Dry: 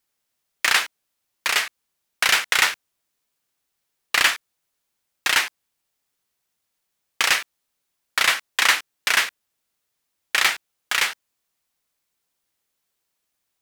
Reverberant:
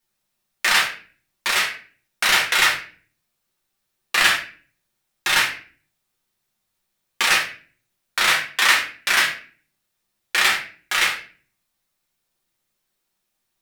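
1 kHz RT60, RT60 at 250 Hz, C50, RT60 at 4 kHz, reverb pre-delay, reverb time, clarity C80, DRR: 0.40 s, 0.65 s, 8.0 dB, 0.35 s, 4 ms, 0.40 s, 12.5 dB, −3.5 dB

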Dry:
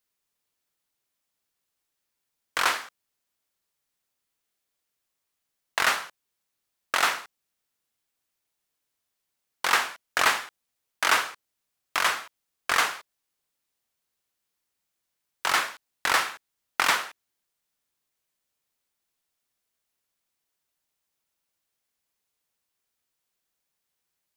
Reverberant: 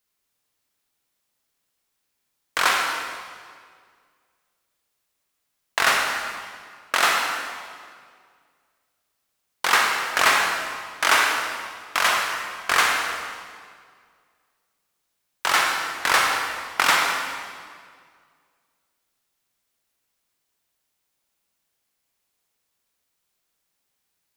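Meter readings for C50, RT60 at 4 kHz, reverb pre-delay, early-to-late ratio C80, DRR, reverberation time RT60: 1.5 dB, 1.6 s, 37 ms, 3.0 dB, 0.5 dB, 2.0 s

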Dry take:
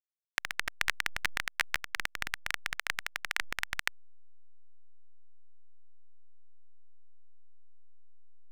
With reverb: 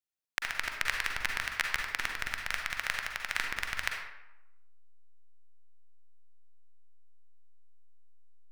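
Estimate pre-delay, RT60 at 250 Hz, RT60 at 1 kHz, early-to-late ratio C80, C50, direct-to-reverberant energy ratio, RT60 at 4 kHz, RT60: 39 ms, 0.85 s, 0.95 s, 5.5 dB, 2.5 dB, 1.5 dB, 0.55 s, 0.90 s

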